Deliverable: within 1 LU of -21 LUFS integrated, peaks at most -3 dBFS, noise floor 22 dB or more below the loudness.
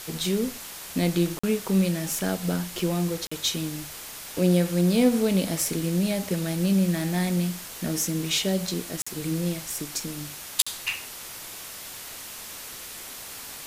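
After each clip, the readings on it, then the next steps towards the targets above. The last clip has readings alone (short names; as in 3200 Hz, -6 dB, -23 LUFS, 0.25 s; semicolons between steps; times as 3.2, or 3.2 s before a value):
dropouts 4; longest dropout 45 ms; noise floor -40 dBFS; noise floor target -49 dBFS; loudness -27.0 LUFS; peak -4.5 dBFS; loudness target -21.0 LUFS
-> interpolate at 1.39/3.27/9.02/10.62, 45 ms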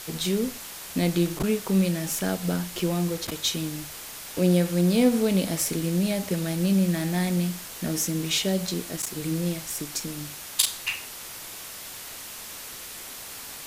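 dropouts 0; noise floor -40 dBFS; noise floor target -49 dBFS
-> denoiser 9 dB, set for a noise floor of -40 dBFS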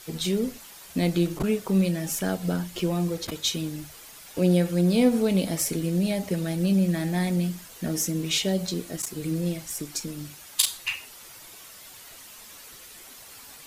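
noise floor -46 dBFS; noise floor target -48 dBFS
-> denoiser 6 dB, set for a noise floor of -46 dBFS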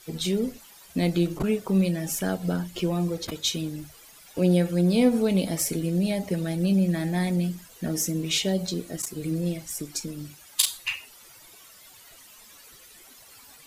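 noise floor -51 dBFS; loudness -26.0 LUFS; peak -4.5 dBFS; loudness target -21.0 LUFS
-> gain +5 dB; limiter -3 dBFS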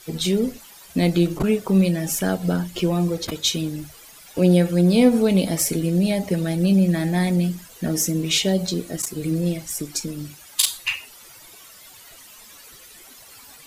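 loudness -21.0 LUFS; peak -3.0 dBFS; noise floor -46 dBFS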